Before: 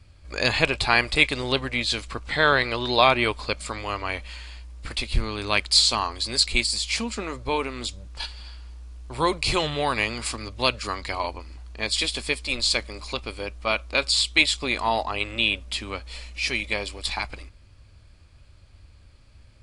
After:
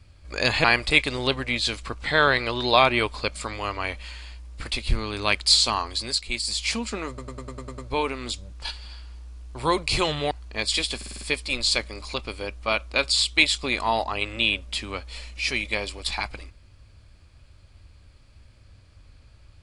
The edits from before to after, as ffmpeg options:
-filter_complex "[0:a]asplit=17[a][b][c][d][e][f][g][h][i][j][k][l][m][n][o][p][q];[a]atrim=end=0.642[r];[b]atrim=start=0.888:end=6.51,asetpts=PTS-STARTPTS,afade=t=out:st=5.322:d=0.3:silence=0.334965[s];[c]atrim=start=6.51:end=6.52,asetpts=PTS-STARTPTS,volume=-9.5dB[t];[d]atrim=start=6.52:end=7.432,asetpts=PTS-STARTPTS,afade=t=in:d=0.3:silence=0.334965[u];[e]atrim=start=7.328:end=7.432[v];[f]atrim=start=7.328:end=7.432[w];[g]atrim=start=7.328:end=7.432[x];[h]atrim=start=7.328:end=7.432[y];[i]atrim=start=7.328:end=7.432[z];[j]atrim=start=7.328:end=7.432[aa];[k]atrim=start=7.328:end=9.862[ab];[l]atrim=start=11.548:end=12.252[ac];[m]atrim=start=12.198:end=12.252[ad];[n]atrim=start=12.198:end=12.252[ae];[o]atrim=start=12.198:end=12.252[af];[p]atrim=start=12.198:end=12.252[ag];[q]atrim=start=12.198[ah];[s][t][u]concat=n=3:v=0:a=1[ai];[r][ai]acrossfade=d=0.004:c1=hsin:c2=hsin[aj];[aj][v]acrossfade=d=0.004:c1=hsin:c2=hsin[ak];[ak][w]acrossfade=d=0.004:c1=hsin:c2=hsin[al];[al][x]acrossfade=d=0.004:c1=hsin:c2=hsin[am];[am][y]acrossfade=d=0.004:c1=hsin:c2=hsin[an];[an][z]acrossfade=d=0.004:c1=hsin:c2=hsin[ao];[ao][aa]acrossfade=d=0.004:c1=hsin:c2=hsin[ap];[ap][ab]acrossfade=d=0.004:c1=hsin:c2=hsin[aq];[aq][ac]acrossfade=d=0.004:c1=hsin:c2=hsin[ar];[ar][ad]acrossfade=d=0.004:c1=hsin:c2=hsin[as];[as][ae]acrossfade=d=0.004:c1=hsin:c2=hsin[at];[at][af]acrossfade=d=0.004:c1=hsin:c2=hsin[au];[au][ag]acrossfade=d=0.004:c1=hsin:c2=hsin[av];[av][ah]acrossfade=d=0.004:c1=hsin:c2=hsin"

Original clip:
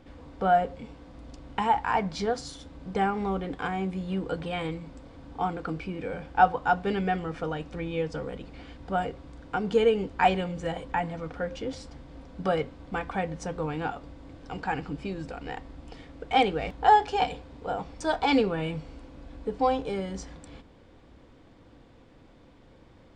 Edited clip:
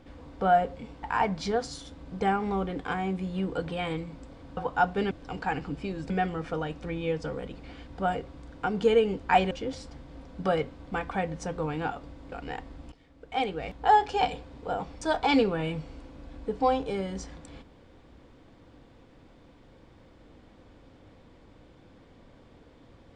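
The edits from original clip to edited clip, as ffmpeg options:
-filter_complex "[0:a]asplit=8[a][b][c][d][e][f][g][h];[a]atrim=end=1.032[i];[b]atrim=start=1.768:end=5.312[j];[c]atrim=start=6.458:end=7.002[k];[d]atrim=start=14.318:end=15.312[l];[e]atrim=start=6.998:end=10.412[m];[f]atrim=start=11.508:end=14.322[n];[g]atrim=start=15.308:end=15.91,asetpts=PTS-STARTPTS,afade=t=out:st=0.598:d=0.004:c=hsin:silence=0.149624[o];[h]atrim=start=15.91,asetpts=PTS-STARTPTS,afade=t=in:d=1.28:silence=0.149624[p];[i][j]acrossfade=d=0.004:c1=hsin:c2=hsin[q];[q][k]acrossfade=d=0.004:c1=hsin:c2=hsin[r];[r][l]acrossfade=d=0.004:c1=hsin:c2=hsin[s];[s][m]acrossfade=d=0.004:c1=hsin:c2=hsin[t];[t][n]acrossfade=d=0.004:c1=hsin:c2=hsin[u];[o][p]concat=n=2:v=0:a=1[v];[u][v]acrossfade=d=0.004:c1=hsin:c2=hsin"

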